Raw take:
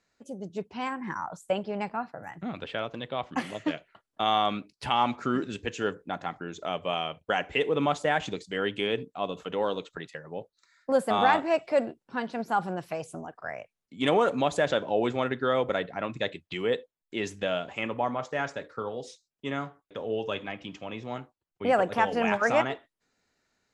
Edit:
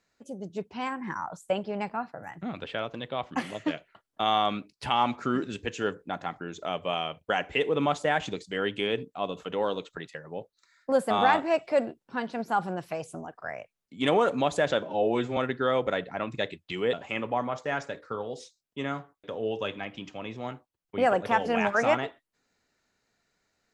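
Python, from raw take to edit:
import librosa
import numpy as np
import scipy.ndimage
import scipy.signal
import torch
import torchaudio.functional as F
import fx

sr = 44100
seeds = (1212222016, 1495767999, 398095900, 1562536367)

y = fx.edit(x, sr, fx.stretch_span(start_s=14.83, length_s=0.36, factor=1.5),
    fx.cut(start_s=16.75, length_s=0.85), tone=tone)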